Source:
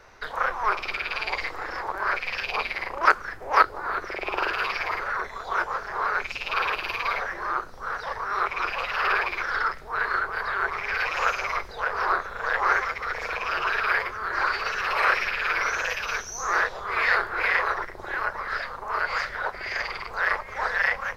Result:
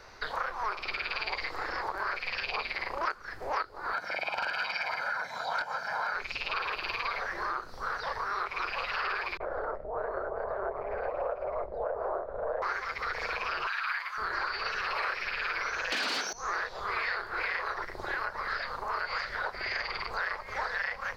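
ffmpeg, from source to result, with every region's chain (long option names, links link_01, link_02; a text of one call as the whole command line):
ffmpeg -i in.wav -filter_complex "[0:a]asettb=1/sr,asplit=3[link_01][link_02][link_03];[link_01]atrim=end=3.934[link_04];[link_02]atrim=start=3.93:end=6.14,asetpts=PTS-STARTPTS,afade=type=in:duration=0.004:curve=qsin,afade=type=out:start_time=2.206:duration=0.004:curve=qsin,highpass=frequency=140:width=0.5412,highpass=frequency=140:width=1.3066,aecho=1:1:1.3:0.92,atrim=end_sample=97461,aeval=exprs='0.188*(abs(mod(val(0)/0.188+3,4)-2)-1)':channel_layout=same[link_05];[link_03]atrim=start=6.136[link_06];[link_04][link_05]acrossfade=duration=0.004:curve1=hsin:curve2=qsin[link_07];[link_07][link_06]acrossfade=duration=0.004:curve1=qsin:curve2=hsin,asettb=1/sr,asplit=3[link_08][link_09][link_10];[link_08]atrim=end=9.374[link_11];[link_09]atrim=start=9.37:end=12.62,asetpts=PTS-STARTPTS,afade=type=in:duration=0.004:curve=qsin,afade=type=out:start_time=3.246:duration=0.004:curve=qsin,lowpass=frequency=610:width_type=q:width=4.7,acrossover=split=170[link_12][link_13];[link_13]adelay=30[link_14];[link_12][link_14]amix=inputs=2:normalize=0,atrim=end_sample=143325[link_15];[link_10]atrim=start=12.616[link_16];[link_11][link_15]acrossfade=duration=0.004:curve1=hsin:curve2=qsin[link_17];[link_17][link_16]acrossfade=duration=0.004:curve1=qsin:curve2=hsin,asettb=1/sr,asplit=3[link_18][link_19][link_20];[link_18]atrim=end=13.674[link_21];[link_19]atrim=start=13.67:end=14.18,asetpts=PTS-STARTPTS,afade=type=in:duration=0.004:curve=qsin,afade=type=out:start_time=0.506:duration=0.004:curve=qsin,highpass=frequency=920:width=0.5412,highpass=frequency=920:width=1.3066,bandreject=frequency=5200:width=8.1,acompressor=mode=upward:threshold=-30dB:ratio=2.5:attack=3.2:release=140:knee=2.83:detection=peak[link_22];[link_20]atrim=start=14.176[link_23];[link_21][link_22]acrossfade=duration=0.004:curve1=hsin:curve2=qsin[link_24];[link_24][link_23]acrossfade=duration=0.004:curve1=qsin:curve2=hsin,asettb=1/sr,asplit=3[link_25][link_26][link_27];[link_25]atrim=end=15.924[link_28];[link_26]atrim=start=15.92:end=16.33,asetpts=PTS-STARTPTS,afade=type=in:duration=0.004:curve=qsin,afade=type=out:start_time=0.406:duration=0.004:curve=qsin,aecho=1:1:1.3:0.32,atrim=end_sample=18081,aeval=exprs='0.188*sin(PI/2*7.08*val(0)/0.188)':channel_layout=same,highpass=frequency=220:width=0.5412,highpass=frequency=220:width=1.3066[link_29];[link_27]atrim=start=16.326[link_30];[link_28][link_29]acrossfade=duration=0.004:curve1=hsin:curve2=qsin[link_31];[link_31][link_30]acrossfade=duration=0.004:curve1=qsin:curve2=hsin,acompressor=threshold=-30dB:ratio=6,equalizer=frequency=4500:width=3.8:gain=9,acrossover=split=4700[link_32][link_33];[link_33]acompressor=threshold=-52dB:ratio=4:attack=1:release=60[link_34];[link_32][link_34]amix=inputs=2:normalize=0" out.wav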